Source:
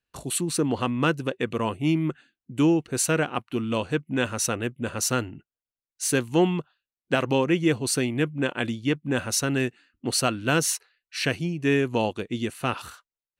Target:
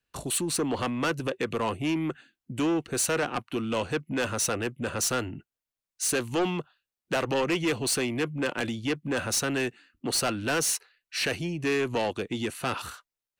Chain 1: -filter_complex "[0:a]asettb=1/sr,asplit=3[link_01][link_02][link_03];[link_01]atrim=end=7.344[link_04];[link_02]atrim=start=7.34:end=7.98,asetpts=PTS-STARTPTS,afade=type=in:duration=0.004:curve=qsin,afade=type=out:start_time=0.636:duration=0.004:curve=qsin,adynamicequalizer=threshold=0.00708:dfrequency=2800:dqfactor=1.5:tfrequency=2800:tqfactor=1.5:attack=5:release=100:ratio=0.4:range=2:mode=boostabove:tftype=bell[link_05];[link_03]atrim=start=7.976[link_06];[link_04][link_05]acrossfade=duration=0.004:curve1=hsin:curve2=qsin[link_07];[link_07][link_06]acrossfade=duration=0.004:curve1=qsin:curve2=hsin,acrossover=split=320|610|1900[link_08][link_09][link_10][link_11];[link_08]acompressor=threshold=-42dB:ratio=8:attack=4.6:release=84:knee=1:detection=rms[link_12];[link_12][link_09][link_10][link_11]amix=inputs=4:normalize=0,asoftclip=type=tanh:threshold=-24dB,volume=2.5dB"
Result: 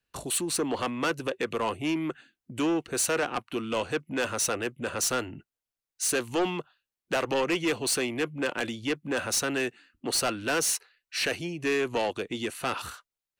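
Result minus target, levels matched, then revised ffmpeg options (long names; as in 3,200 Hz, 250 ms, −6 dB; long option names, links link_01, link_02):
downward compressor: peak gain reduction +7.5 dB
-filter_complex "[0:a]asettb=1/sr,asplit=3[link_01][link_02][link_03];[link_01]atrim=end=7.344[link_04];[link_02]atrim=start=7.34:end=7.98,asetpts=PTS-STARTPTS,afade=type=in:duration=0.004:curve=qsin,afade=type=out:start_time=0.636:duration=0.004:curve=qsin,adynamicequalizer=threshold=0.00708:dfrequency=2800:dqfactor=1.5:tfrequency=2800:tqfactor=1.5:attack=5:release=100:ratio=0.4:range=2:mode=boostabove:tftype=bell[link_05];[link_03]atrim=start=7.976[link_06];[link_04][link_05]acrossfade=duration=0.004:curve1=hsin:curve2=qsin[link_07];[link_07][link_06]acrossfade=duration=0.004:curve1=qsin:curve2=hsin,acrossover=split=320|610|1900[link_08][link_09][link_10][link_11];[link_08]acompressor=threshold=-33.5dB:ratio=8:attack=4.6:release=84:knee=1:detection=rms[link_12];[link_12][link_09][link_10][link_11]amix=inputs=4:normalize=0,asoftclip=type=tanh:threshold=-24dB,volume=2.5dB"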